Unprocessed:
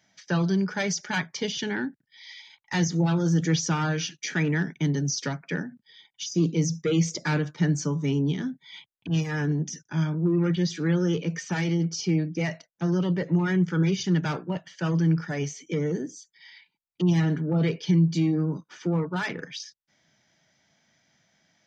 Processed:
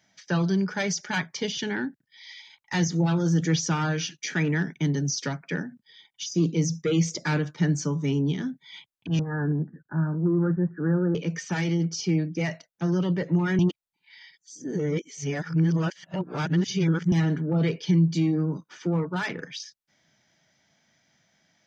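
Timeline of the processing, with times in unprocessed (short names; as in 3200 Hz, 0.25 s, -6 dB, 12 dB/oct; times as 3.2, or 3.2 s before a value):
9.19–11.15 steep low-pass 1700 Hz 96 dB/oct
13.59–17.12 reverse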